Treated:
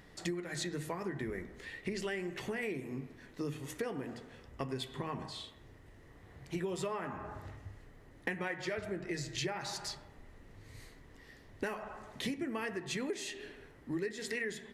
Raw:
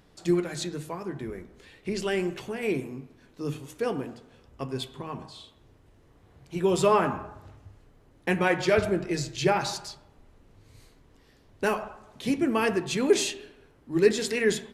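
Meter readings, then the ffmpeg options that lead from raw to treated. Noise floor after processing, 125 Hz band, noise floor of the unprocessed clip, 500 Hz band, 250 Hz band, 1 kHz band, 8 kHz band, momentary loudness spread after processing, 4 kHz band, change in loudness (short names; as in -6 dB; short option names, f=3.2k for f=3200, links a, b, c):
-58 dBFS, -9.0 dB, -59 dBFS, -13.5 dB, -11.0 dB, -13.0 dB, -9.5 dB, 19 LU, -8.0 dB, -12.0 dB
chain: -af "equalizer=f=1.9k:w=5.8:g=11.5,acompressor=threshold=-35dB:ratio=16,volume=1dB"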